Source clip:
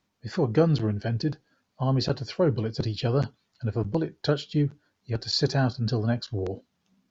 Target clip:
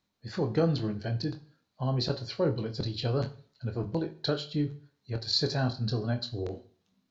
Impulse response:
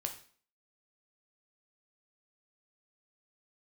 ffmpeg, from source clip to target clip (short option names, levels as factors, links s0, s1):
-filter_complex "[0:a]equalizer=f=4000:t=o:w=0.22:g=8.5,asplit=2[s0][s1];[1:a]atrim=start_sample=2205,adelay=24[s2];[s1][s2]afir=irnorm=-1:irlink=0,volume=0.447[s3];[s0][s3]amix=inputs=2:normalize=0,volume=0.531"